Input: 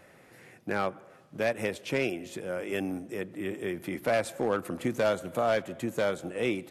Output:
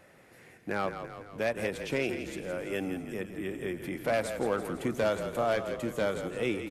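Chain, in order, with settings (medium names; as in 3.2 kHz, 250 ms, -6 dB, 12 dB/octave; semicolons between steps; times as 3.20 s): frequency-shifting echo 167 ms, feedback 58%, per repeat -35 Hz, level -9 dB; trim -2 dB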